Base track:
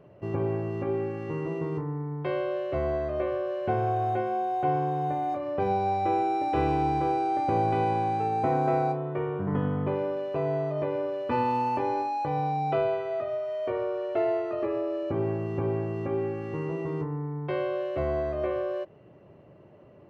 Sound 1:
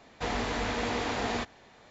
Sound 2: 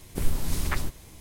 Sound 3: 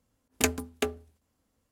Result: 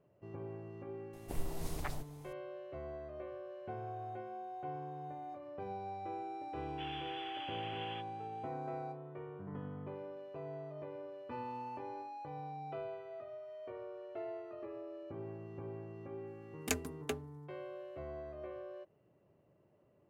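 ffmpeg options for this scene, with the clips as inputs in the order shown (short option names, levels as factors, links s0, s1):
-filter_complex "[0:a]volume=0.141[s0];[2:a]equalizer=f=700:t=o:w=0.75:g=12.5[s1];[1:a]lowpass=f=3000:t=q:w=0.5098,lowpass=f=3000:t=q:w=0.6013,lowpass=f=3000:t=q:w=0.9,lowpass=f=3000:t=q:w=2.563,afreqshift=-3500[s2];[s1]atrim=end=1.2,asetpts=PTS-STARTPTS,volume=0.2,afade=t=in:d=0.004:c=hsin,afade=t=out:st=1.196:d=0.004:c=hsin,adelay=1130[s3];[s2]atrim=end=1.9,asetpts=PTS-STARTPTS,volume=0.141,afade=t=in:d=0.004:c=hsin,afade=t=out:st=1.896:d=0.004:c=hsin,adelay=6570[s4];[3:a]atrim=end=1.71,asetpts=PTS-STARTPTS,volume=0.335,afade=t=in:d=0.004:c=hsin,afade=t=out:st=1.706:d=0.004:c=hsin,adelay=16270[s5];[s0][s3][s4][s5]amix=inputs=4:normalize=0"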